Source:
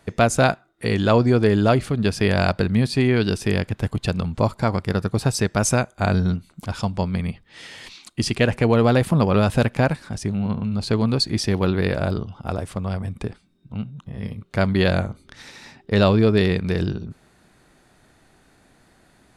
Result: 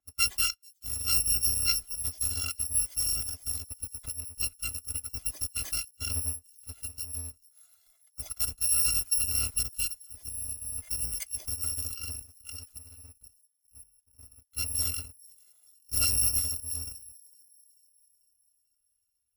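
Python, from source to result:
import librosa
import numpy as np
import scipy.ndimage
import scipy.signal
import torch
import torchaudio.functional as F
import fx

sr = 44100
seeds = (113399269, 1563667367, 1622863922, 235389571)

y = fx.bit_reversed(x, sr, seeds[0], block=256)
y = fx.echo_wet_highpass(y, sr, ms=441, feedback_pct=64, hz=5100.0, wet_db=-15.5)
y = fx.level_steps(y, sr, step_db=10, at=(12.78, 14.32))
y = fx.cheby_harmonics(y, sr, harmonics=(3,), levels_db=(-17,), full_scale_db=-3.5)
y = fx.spectral_expand(y, sr, expansion=1.5)
y = y * 10.0 ** (-7.5 / 20.0)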